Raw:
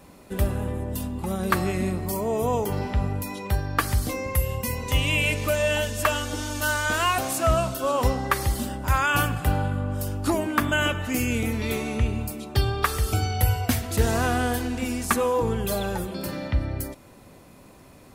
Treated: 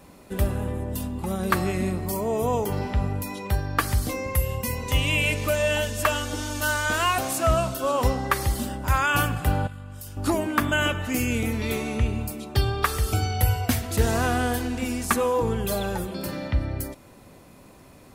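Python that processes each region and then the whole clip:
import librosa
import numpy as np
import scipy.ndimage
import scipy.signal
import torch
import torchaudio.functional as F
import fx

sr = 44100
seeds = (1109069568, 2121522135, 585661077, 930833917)

y = fx.chain(x, sr, fx.tone_stack(knobs='5-5-5'),
    fx.env_flatten(amount_pct=70), at=(9.67, 10.17))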